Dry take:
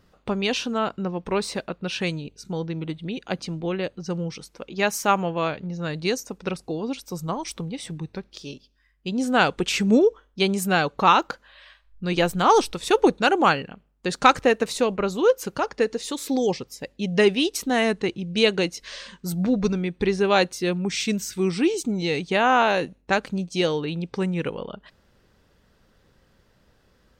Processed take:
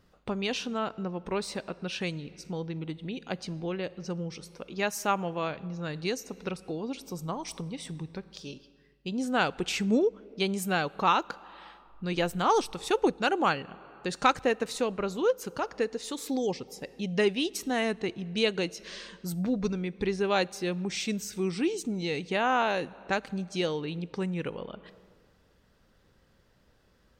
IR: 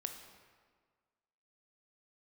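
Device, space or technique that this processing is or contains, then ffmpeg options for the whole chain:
compressed reverb return: -filter_complex "[0:a]asplit=2[link_01][link_02];[1:a]atrim=start_sample=2205[link_03];[link_02][link_03]afir=irnorm=-1:irlink=0,acompressor=threshold=-34dB:ratio=6,volume=-2.5dB[link_04];[link_01][link_04]amix=inputs=2:normalize=0,volume=-8dB"

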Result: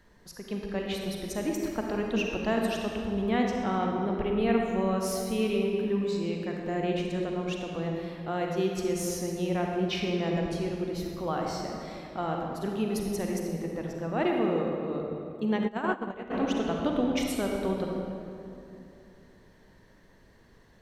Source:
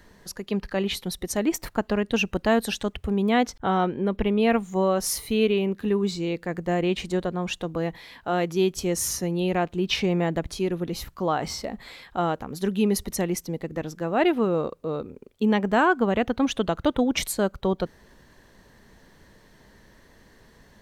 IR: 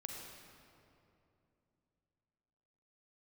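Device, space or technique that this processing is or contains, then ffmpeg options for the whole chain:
swimming-pool hall: -filter_complex "[1:a]atrim=start_sample=2205[link_01];[0:a][link_01]afir=irnorm=-1:irlink=0,highshelf=frequency=5600:gain=-4.5,asplit=3[link_02][link_03][link_04];[link_02]afade=type=out:start_time=15.67:duration=0.02[link_05];[link_03]agate=range=-16dB:threshold=-20dB:ratio=16:detection=peak,afade=type=in:start_time=15.67:duration=0.02,afade=type=out:start_time=16.3:duration=0.02[link_06];[link_04]afade=type=in:start_time=16.3:duration=0.02[link_07];[link_05][link_06][link_07]amix=inputs=3:normalize=0,volume=-3dB"

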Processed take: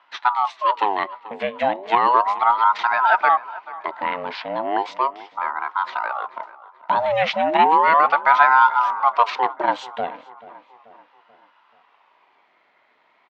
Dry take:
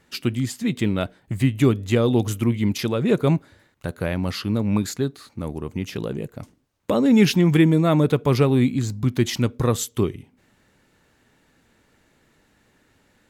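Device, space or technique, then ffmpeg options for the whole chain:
voice changer toy: -filter_complex "[0:a]aeval=exprs='val(0)*sin(2*PI*760*n/s+760*0.55/0.35*sin(2*PI*0.35*n/s))':channel_layout=same,highpass=460,equalizer=frequency=500:width_type=q:width=4:gain=-6,equalizer=frequency=980:width_type=q:width=4:gain=8,equalizer=frequency=2000:width_type=q:width=4:gain=6,lowpass=frequency=3800:width=0.5412,lowpass=frequency=3800:width=1.3066,asplit=2[link_01][link_02];[link_02]adelay=435,lowpass=frequency=3000:poles=1,volume=-18dB,asplit=2[link_03][link_04];[link_04]adelay=435,lowpass=frequency=3000:poles=1,volume=0.51,asplit=2[link_05][link_06];[link_06]adelay=435,lowpass=frequency=3000:poles=1,volume=0.51,asplit=2[link_07][link_08];[link_08]adelay=435,lowpass=frequency=3000:poles=1,volume=0.51[link_09];[link_01][link_03][link_05][link_07][link_09]amix=inputs=5:normalize=0,volume=3dB"

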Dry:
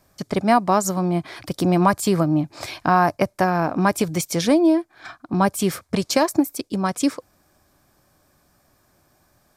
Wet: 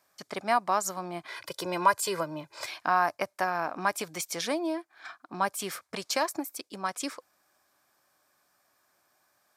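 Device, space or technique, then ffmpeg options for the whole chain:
filter by subtraction: -filter_complex "[0:a]asettb=1/sr,asplit=3[link_01][link_02][link_03];[link_01]atrim=end=1.284[link_04];[link_02]atrim=start=1.28:end=2.66,asetpts=PTS-STARTPTS,afade=type=in:duration=0.004:curve=qsin,afade=type=out:start_time=1.376:duration=0.004:curve=qsin,aecho=1:1:2:0.96,atrim=end_sample=60858[link_05];[link_03]atrim=start=2.656[link_06];[link_04][link_05]acrossfade=duration=0.004:curve1=hsin:curve2=qsin[link_07];[link_07][link_06]acrossfade=duration=0.004:curve1=qsin:curve2=hsin,asplit=2[link_08][link_09];[link_09]lowpass=1300,volume=-1[link_10];[link_08][link_10]amix=inputs=2:normalize=0,volume=-7dB"

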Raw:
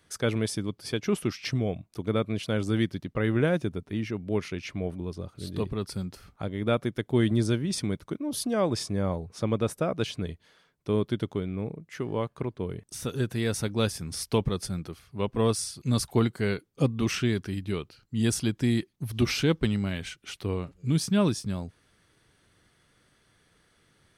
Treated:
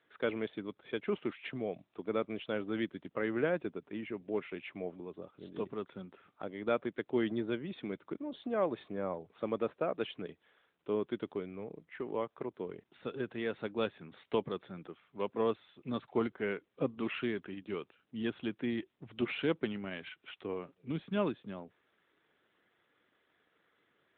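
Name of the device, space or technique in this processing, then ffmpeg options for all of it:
telephone: -af "highpass=300,lowpass=3200,volume=-4dB" -ar 8000 -c:a libopencore_amrnb -b:a 12200

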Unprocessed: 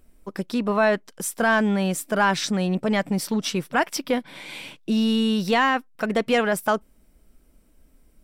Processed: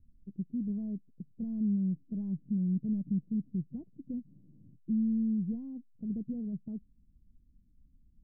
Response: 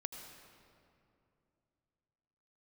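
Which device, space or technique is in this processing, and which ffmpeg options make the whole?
the neighbour's flat through the wall: -af "lowpass=frequency=230:width=0.5412,lowpass=frequency=230:width=1.3066,equalizer=frequency=100:width_type=o:width=0.96:gain=8,volume=-6.5dB"

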